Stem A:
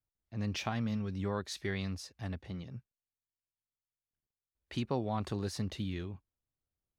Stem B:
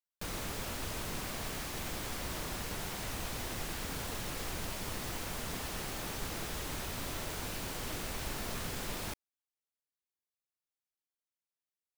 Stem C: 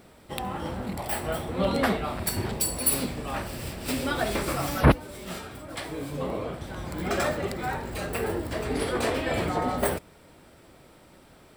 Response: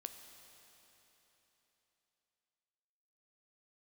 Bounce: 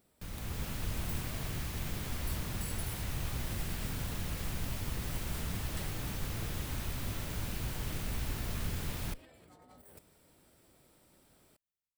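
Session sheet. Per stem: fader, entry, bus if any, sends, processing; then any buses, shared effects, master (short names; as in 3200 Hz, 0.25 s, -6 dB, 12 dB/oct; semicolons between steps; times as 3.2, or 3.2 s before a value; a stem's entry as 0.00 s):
off
+1.0 dB, 0.00 s, no send, octaver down 1 oct, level +2 dB; tone controls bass +9 dB, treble -12 dB
-15.5 dB, 0.00 s, no send, tilt shelf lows +3.5 dB, about 850 Hz; negative-ratio compressor -35 dBFS, ratio -1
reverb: off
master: pre-emphasis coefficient 0.8; AGC gain up to 7 dB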